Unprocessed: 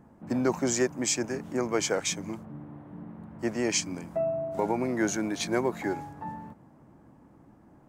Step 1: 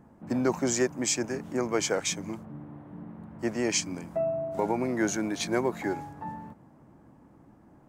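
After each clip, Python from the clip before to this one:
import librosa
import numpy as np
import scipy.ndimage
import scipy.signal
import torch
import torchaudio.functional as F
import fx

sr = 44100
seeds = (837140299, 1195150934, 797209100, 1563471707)

y = x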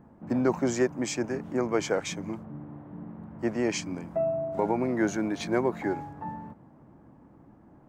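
y = fx.peak_eq(x, sr, hz=11000.0, db=-11.5, octaves=2.5)
y = y * 10.0 ** (1.5 / 20.0)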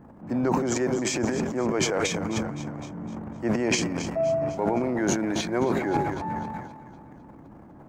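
y = fx.echo_split(x, sr, split_hz=560.0, low_ms=117, high_ms=255, feedback_pct=52, wet_db=-13)
y = fx.transient(y, sr, attack_db=-4, sustain_db=12)
y = fx.rider(y, sr, range_db=4, speed_s=0.5)
y = y * 10.0 ** (1.5 / 20.0)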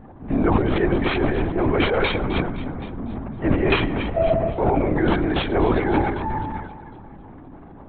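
y = x + 10.0 ** (-23.5 / 20.0) * np.pad(x, (int(110 * sr / 1000.0), 0))[:len(x)]
y = (np.kron(y[::6], np.eye(6)[0]) * 6)[:len(y)]
y = fx.lpc_vocoder(y, sr, seeds[0], excitation='whisper', order=16)
y = y * 10.0 ** (5.5 / 20.0)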